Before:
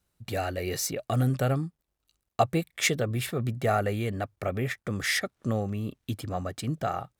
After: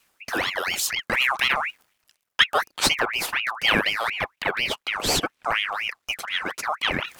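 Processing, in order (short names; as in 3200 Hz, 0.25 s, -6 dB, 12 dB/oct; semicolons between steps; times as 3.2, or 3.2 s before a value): reverse; upward compressor, threshold -28 dBFS; reverse; HPF 150 Hz; ring modulator with a swept carrier 1800 Hz, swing 50%, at 4.1 Hz; gain +8 dB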